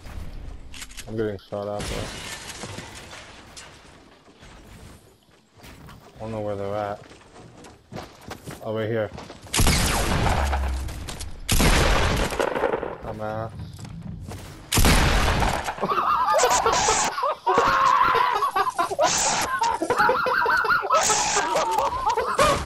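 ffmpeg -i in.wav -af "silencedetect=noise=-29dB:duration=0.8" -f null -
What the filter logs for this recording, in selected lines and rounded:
silence_start: 3.59
silence_end: 6.21 | silence_duration: 2.62
silence_start: 6.95
silence_end: 7.96 | silence_duration: 1.01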